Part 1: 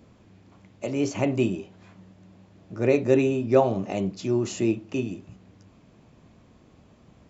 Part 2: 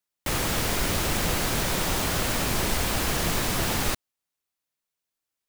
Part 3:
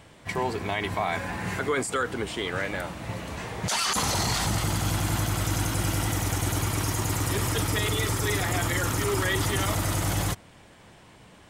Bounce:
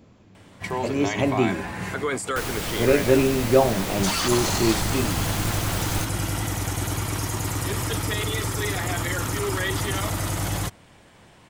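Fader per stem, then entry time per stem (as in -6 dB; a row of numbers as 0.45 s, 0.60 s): +1.5 dB, -4.0 dB, 0.0 dB; 0.00 s, 2.10 s, 0.35 s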